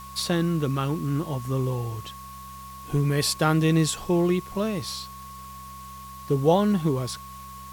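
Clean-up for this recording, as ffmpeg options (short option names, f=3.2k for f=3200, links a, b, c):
-af "bandreject=f=65.3:t=h:w=4,bandreject=f=130.6:t=h:w=4,bandreject=f=195.9:t=h:w=4,bandreject=f=1.1k:w=30,afwtdn=0.0035"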